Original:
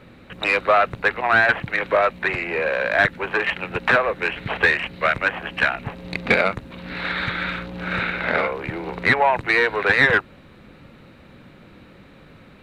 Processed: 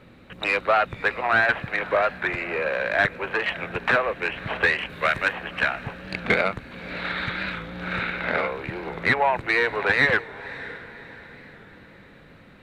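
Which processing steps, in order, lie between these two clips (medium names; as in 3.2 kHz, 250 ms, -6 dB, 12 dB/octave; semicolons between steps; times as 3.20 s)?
4.90–5.33 s: treble shelf 4.4 kHz +10 dB; echo that smears into a reverb 582 ms, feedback 43%, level -16 dB; warped record 45 rpm, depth 100 cents; trim -3.5 dB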